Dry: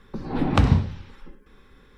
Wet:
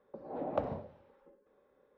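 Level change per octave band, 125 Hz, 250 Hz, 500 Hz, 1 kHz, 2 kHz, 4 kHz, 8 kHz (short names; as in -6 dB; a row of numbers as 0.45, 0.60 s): -27.0 dB, -19.0 dB, -4.5 dB, -11.5 dB, -22.0 dB, under -25 dB, n/a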